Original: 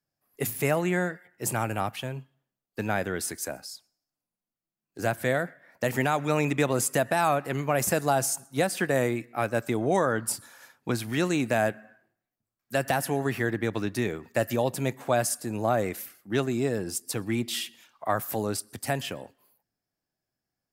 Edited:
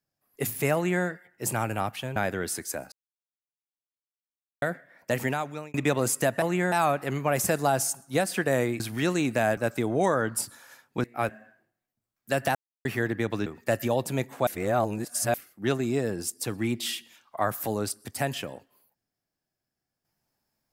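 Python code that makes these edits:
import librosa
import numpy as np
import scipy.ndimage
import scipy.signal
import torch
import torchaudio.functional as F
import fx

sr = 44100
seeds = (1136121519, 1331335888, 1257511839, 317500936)

y = fx.edit(x, sr, fx.duplicate(start_s=0.75, length_s=0.3, to_s=7.15),
    fx.cut(start_s=2.16, length_s=0.73),
    fx.silence(start_s=3.65, length_s=1.7),
    fx.fade_out_span(start_s=5.88, length_s=0.59),
    fx.swap(start_s=9.23, length_s=0.25, other_s=10.95, other_length_s=0.77),
    fx.silence(start_s=12.98, length_s=0.3),
    fx.cut(start_s=13.89, length_s=0.25),
    fx.reverse_span(start_s=15.15, length_s=0.87), tone=tone)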